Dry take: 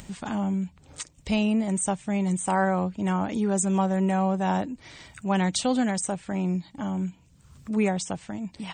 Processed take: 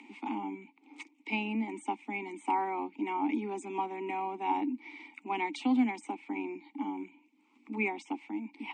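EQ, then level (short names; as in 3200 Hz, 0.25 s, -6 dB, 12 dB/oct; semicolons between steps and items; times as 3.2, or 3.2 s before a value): vowel filter u; steep high-pass 220 Hz 96 dB/oct; bell 2300 Hz +7 dB 0.99 oct; +7.5 dB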